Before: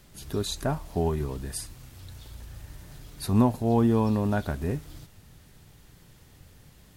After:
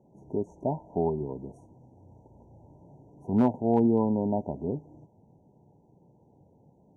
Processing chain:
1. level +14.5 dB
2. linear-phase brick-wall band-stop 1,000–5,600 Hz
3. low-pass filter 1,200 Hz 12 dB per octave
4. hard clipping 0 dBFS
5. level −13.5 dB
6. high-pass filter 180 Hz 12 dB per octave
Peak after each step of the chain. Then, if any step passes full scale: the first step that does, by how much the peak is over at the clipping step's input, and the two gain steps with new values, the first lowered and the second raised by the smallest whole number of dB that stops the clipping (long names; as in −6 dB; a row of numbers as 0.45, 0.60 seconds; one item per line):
+4.0, +5.0, +4.5, 0.0, −13.5, −11.0 dBFS
step 1, 4.5 dB
step 1 +9.5 dB, step 5 −8.5 dB